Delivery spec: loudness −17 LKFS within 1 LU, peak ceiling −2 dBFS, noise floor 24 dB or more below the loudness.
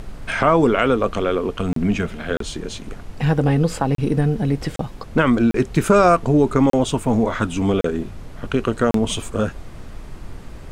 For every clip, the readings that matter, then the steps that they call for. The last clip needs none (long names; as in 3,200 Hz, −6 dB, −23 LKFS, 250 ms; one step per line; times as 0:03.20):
number of dropouts 8; longest dropout 33 ms; background noise floor −37 dBFS; target noise floor −44 dBFS; integrated loudness −19.5 LKFS; sample peak −2.0 dBFS; target loudness −17.0 LKFS
→ repair the gap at 0:01.73/0:02.37/0:03.95/0:04.76/0:05.51/0:06.70/0:07.81/0:08.91, 33 ms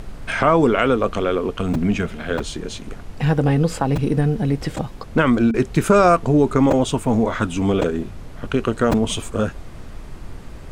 number of dropouts 0; background noise floor −37 dBFS; target noise floor −44 dBFS
→ noise reduction from a noise print 7 dB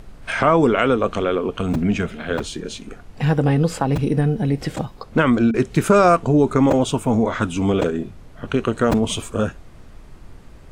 background noise floor −43 dBFS; target noise floor −44 dBFS
→ noise reduction from a noise print 6 dB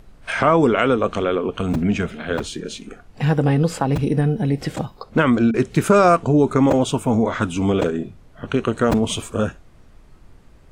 background noise floor −48 dBFS; integrated loudness −19.5 LKFS; sample peak −2.0 dBFS; target loudness −17.0 LKFS
→ level +2.5 dB
brickwall limiter −2 dBFS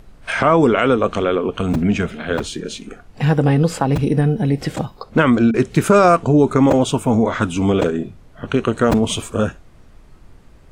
integrated loudness −17.0 LKFS; sample peak −2.0 dBFS; background noise floor −46 dBFS